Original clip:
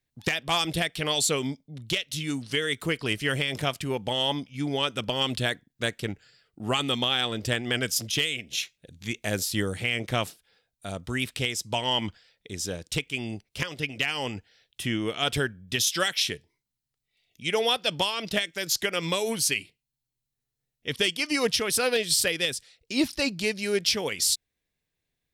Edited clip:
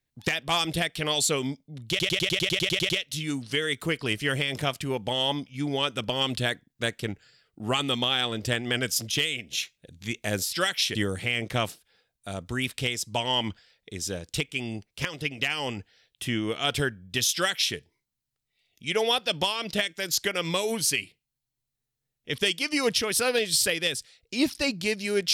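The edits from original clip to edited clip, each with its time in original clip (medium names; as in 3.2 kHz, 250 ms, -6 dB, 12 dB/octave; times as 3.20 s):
1.89 s: stutter 0.10 s, 11 plays
15.92–16.34 s: copy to 9.53 s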